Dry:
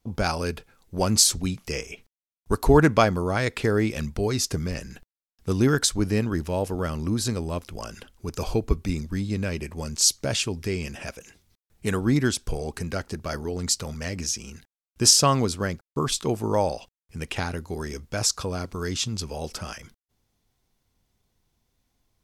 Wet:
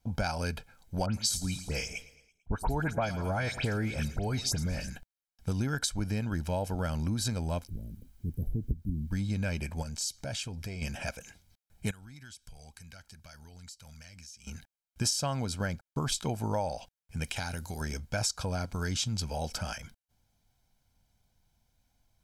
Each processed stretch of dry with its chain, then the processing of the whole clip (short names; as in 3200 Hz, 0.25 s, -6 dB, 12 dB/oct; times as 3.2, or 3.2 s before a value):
1.06–4.9 dispersion highs, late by 83 ms, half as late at 2900 Hz + feedback echo 0.111 s, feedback 53%, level -18.5 dB
7.67–9.11 inverse Chebyshev band-stop 1400–4300 Hz, stop band 80 dB + requantised 12-bit, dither triangular
9.82–10.82 compressor 2.5:1, threshold -35 dBFS + core saturation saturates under 350 Hz
11.91–14.47 passive tone stack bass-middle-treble 5-5-5 + compressor 4:1, threshold -46 dBFS
17.24–17.81 high shelf 3300 Hz +11 dB + compressor 2.5:1, threshold -33 dBFS
whole clip: comb 1.3 ms, depth 57%; compressor 6:1, threshold -25 dBFS; gain -2.5 dB